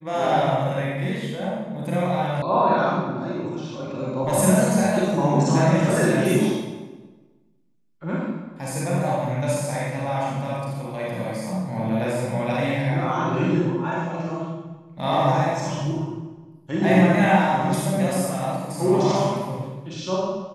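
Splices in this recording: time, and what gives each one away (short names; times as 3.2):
2.42 sound cut off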